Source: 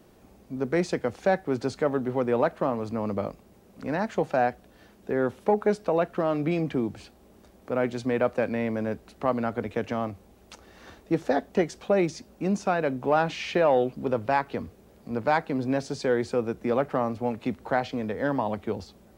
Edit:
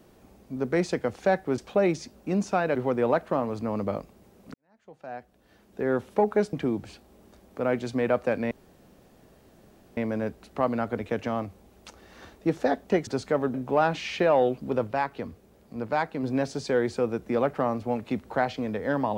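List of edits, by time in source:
1.58–2.05 s: swap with 11.72–12.89 s
3.84–5.21 s: fade in quadratic
5.83–6.64 s: delete
8.62 s: insert room tone 1.46 s
14.22–15.58 s: gain -3 dB

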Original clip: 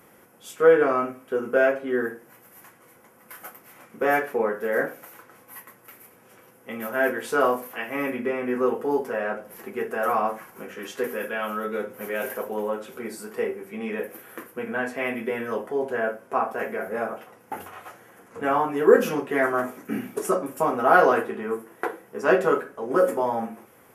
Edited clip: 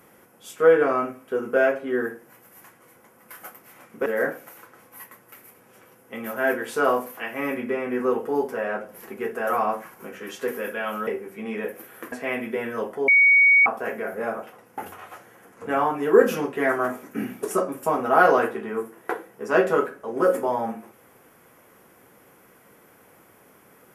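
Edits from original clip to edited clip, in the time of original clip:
4.06–4.62 s: delete
11.63–13.42 s: delete
14.47–14.86 s: delete
15.82–16.40 s: bleep 2.24 kHz -12 dBFS

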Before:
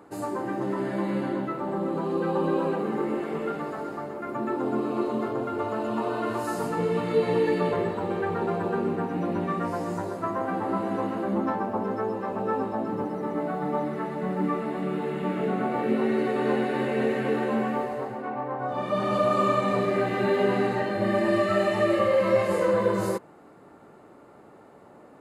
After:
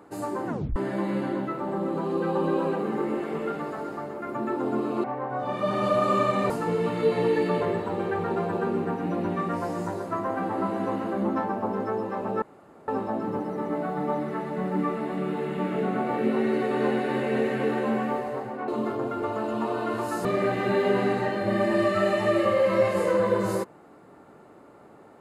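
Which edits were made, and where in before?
0.47 s: tape stop 0.29 s
5.04–6.61 s: swap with 18.33–19.79 s
12.53 s: insert room tone 0.46 s

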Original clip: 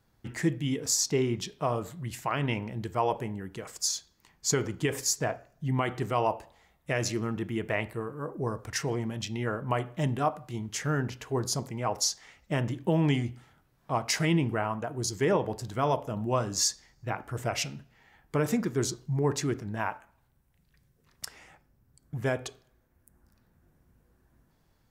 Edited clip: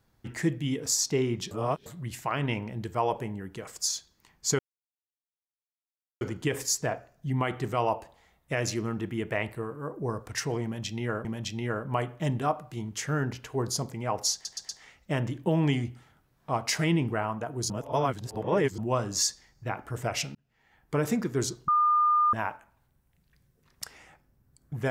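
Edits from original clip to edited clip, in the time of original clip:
1.51–1.86 s: reverse
4.59 s: insert silence 1.62 s
9.02–9.63 s: loop, 2 plays
12.10 s: stutter 0.12 s, 4 plays
15.11–16.19 s: reverse
17.76–18.36 s: fade in
19.09–19.74 s: bleep 1.21 kHz -19.5 dBFS

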